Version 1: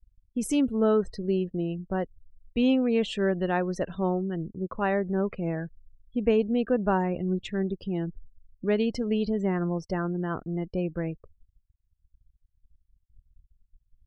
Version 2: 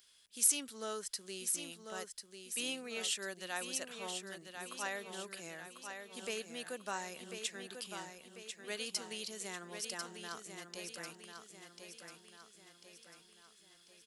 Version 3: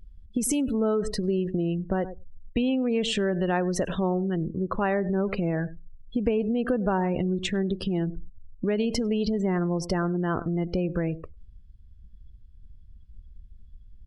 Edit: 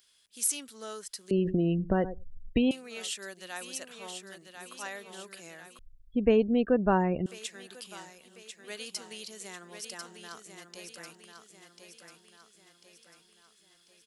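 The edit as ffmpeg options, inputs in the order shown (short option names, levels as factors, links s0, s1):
-filter_complex "[1:a]asplit=3[s0][s1][s2];[s0]atrim=end=1.312[s3];[2:a]atrim=start=1.308:end=2.712[s4];[s1]atrim=start=2.708:end=5.792[s5];[0:a]atrim=start=5.788:end=7.262[s6];[s2]atrim=start=7.258[s7];[s3][s4]acrossfade=d=0.004:c1=hsin:c2=hsin[s8];[s8][s5]acrossfade=d=0.004:c1=hsin:c2=hsin[s9];[s9][s6]acrossfade=d=0.004:c1=hsin:c2=hsin[s10];[s10][s7]acrossfade=d=0.004:c1=hsin:c2=hsin"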